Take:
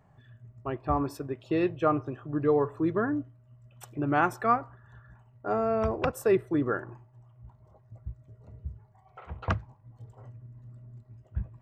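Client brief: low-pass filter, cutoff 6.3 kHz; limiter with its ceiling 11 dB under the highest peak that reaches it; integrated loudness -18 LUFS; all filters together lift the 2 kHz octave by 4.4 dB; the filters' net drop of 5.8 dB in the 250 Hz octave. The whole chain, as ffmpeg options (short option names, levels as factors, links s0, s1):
-af "lowpass=6300,equalizer=f=250:t=o:g=-8.5,equalizer=f=2000:t=o:g=6.5,volume=7.08,alimiter=limit=0.531:level=0:latency=1"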